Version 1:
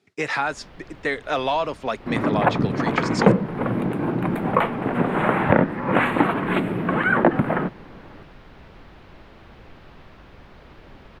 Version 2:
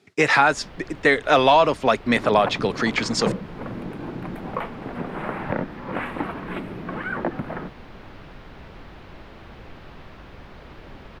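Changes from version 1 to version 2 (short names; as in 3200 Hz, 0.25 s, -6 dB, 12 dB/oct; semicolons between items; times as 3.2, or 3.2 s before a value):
speech +7.5 dB; first sound +3.5 dB; second sound -9.5 dB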